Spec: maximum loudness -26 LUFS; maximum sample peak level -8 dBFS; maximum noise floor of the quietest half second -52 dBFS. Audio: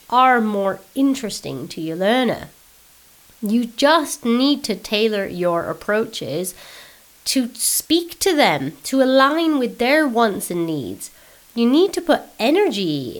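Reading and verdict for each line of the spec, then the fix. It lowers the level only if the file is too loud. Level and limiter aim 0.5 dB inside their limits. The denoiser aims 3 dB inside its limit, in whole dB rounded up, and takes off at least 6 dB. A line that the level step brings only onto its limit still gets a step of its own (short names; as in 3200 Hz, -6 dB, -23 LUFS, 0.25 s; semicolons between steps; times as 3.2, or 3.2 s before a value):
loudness -18.5 LUFS: fail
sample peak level -3.0 dBFS: fail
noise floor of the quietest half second -50 dBFS: fail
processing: gain -8 dB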